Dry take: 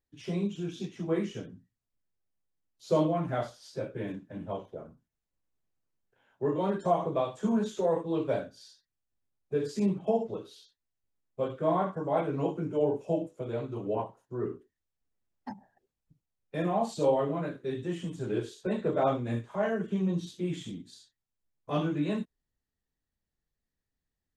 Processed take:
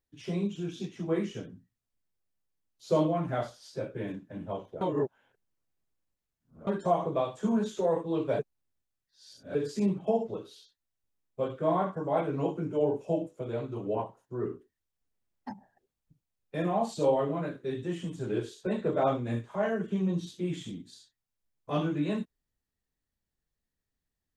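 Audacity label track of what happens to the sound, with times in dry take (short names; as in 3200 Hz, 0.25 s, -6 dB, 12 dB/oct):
4.810000	6.670000	reverse
8.390000	9.550000	reverse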